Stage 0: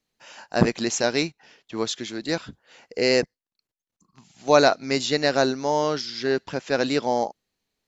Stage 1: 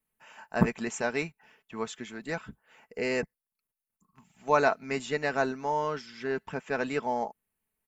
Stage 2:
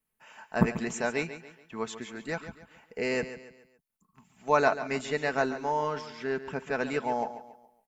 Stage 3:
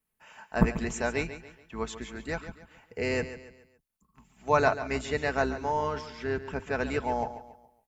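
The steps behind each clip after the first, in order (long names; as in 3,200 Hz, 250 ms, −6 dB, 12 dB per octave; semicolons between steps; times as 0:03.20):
comb filter 4.6 ms, depth 46%; harmonic and percussive parts rebalanced harmonic −3 dB; drawn EQ curve 130 Hz 0 dB, 280 Hz −5 dB, 650 Hz −5 dB, 930 Hz 0 dB, 2,600 Hz −3 dB, 4,200 Hz −17 dB, 6,500 Hz −12 dB, 9,600 Hz +9 dB; level −2.5 dB
repeating echo 140 ms, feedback 39%, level −12.5 dB
sub-octave generator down 2 octaves, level −3 dB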